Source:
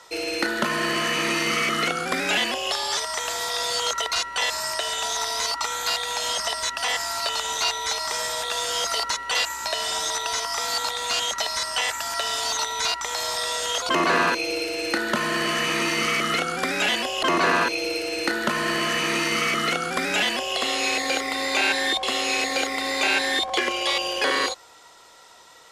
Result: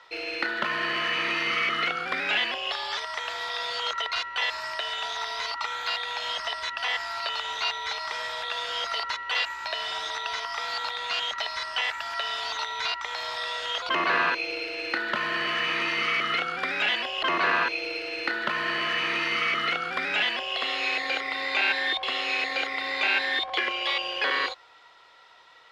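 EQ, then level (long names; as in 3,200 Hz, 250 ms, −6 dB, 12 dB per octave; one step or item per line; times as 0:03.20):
high-frequency loss of the air 360 metres
tilt shelving filter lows −8 dB, about 1,100 Hz
parametric band 230 Hz −4 dB 0.59 octaves
−1.5 dB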